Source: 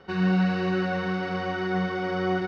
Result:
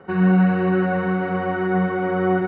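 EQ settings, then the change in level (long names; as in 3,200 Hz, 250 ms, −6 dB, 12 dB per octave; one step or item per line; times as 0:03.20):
band-pass filter 100–2,300 Hz
high-frequency loss of the air 350 metres
+7.5 dB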